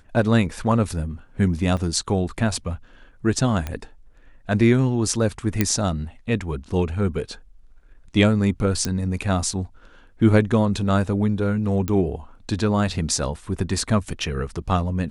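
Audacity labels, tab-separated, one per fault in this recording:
1.770000	1.780000	gap 5.2 ms
3.670000	3.670000	pop -14 dBFS
5.610000	5.610000	pop -4 dBFS
8.850000	8.850000	pop -10 dBFS
11.880000	11.880000	pop -12 dBFS

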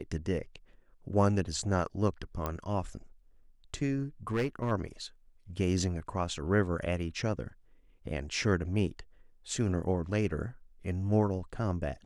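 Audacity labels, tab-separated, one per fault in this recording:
2.460000	2.460000	pop -19 dBFS
4.310000	4.720000	clipped -25 dBFS

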